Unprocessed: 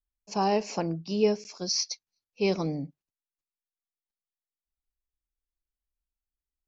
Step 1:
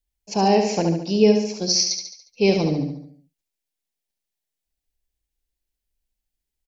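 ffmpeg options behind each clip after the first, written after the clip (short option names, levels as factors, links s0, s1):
-filter_complex "[0:a]equalizer=f=1200:t=o:w=0.59:g=-12.5,asplit=2[s0][s1];[s1]aecho=0:1:71|142|213|284|355|426:0.531|0.265|0.133|0.0664|0.0332|0.0166[s2];[s0][s2]amix=inputs=2:normalize=0,volume=2.51"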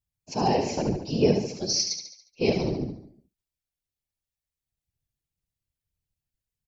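-af "afftfilt=real='hypot(re,im)*cos(2*PI*random(0))':imag='hypot(re,im)*sin(2*PI*random(1))':win_size=512:overlap=0.75"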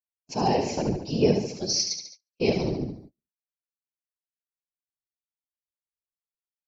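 -af "agate=range=0.0316:threshold=0.00501:ratio=16:detection=peak"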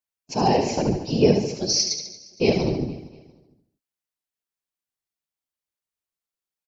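-af "aecho=1:1:232|464|696:0.112|0.0482|0.0207,volume=1.58"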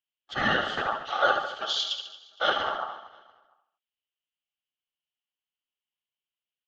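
-af "aeval=exprs='val(0)*sin(2*PI*1000*n/s)':c=same,lowpass=f=3000:t=q:w=8.5,volume=0.562"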